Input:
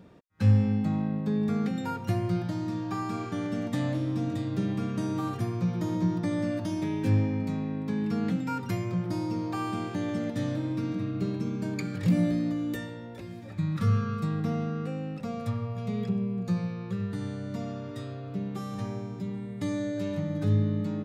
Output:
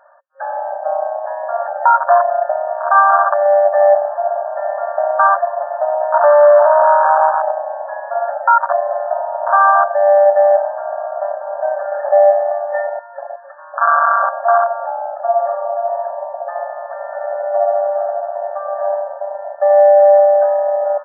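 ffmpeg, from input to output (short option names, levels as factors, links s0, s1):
-filter_complex "[0:a]asettb=1/sr,asplit=3[s0][s1][s2];[s0]atrim=end=6.144[s3];[s1]atrim=start=6.14:end=7.51,asetpts=PTS-STARTPTS,afade=t=in:d=0.004:c=qsin,afade=t=out:st=1.366:d=0.004:c=qsin,acontrast=43[s4];[s2]atrim=start=7.506[s5];[s3][s4]acrossfade=d=0.004:c1=hsin:c2=qsin[s6];[s6][s5]acrossfade=d=0.004:c1=qsin:c2=hsin,afwtdn=0.0224,afftfilt=real='re*between(b*sr/4096,540,1800)':imag='im*between(b*sr/4096,540,1800)':win_size=4096:overlap=0.75,alimiter=level_in=39.8:limit=0.891:release=50:level=0:latency=1,volume=0.891"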